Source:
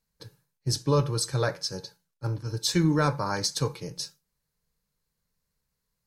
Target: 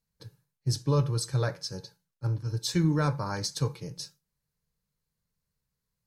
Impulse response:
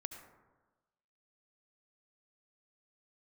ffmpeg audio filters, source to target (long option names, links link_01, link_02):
-af "equalizer=frequency=110:width_type=o:width=1.6:gain=6.5,volume=-5dB"